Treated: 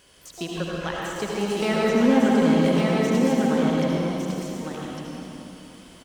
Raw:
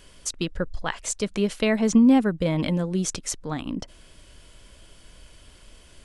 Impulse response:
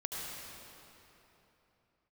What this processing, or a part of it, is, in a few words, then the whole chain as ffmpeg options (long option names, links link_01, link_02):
shimmer-style reverb: -filter_complex "[0:a]highpass=frequency=190:poles=1,deesser=0.75,aecho=1:1:1154:0.668,asplit=2[link_01][link_02];[link_02]asetrate=88200,aresample=44100,atempo=0.5,volume=-11dB[link_03];[link_01][link_03]amix=inputs=2:normalize=0[link_04];[1:a]atrim=start_sample=2205[link_05];[link_04][link_05]afir=irnorm=-1:irlink=0"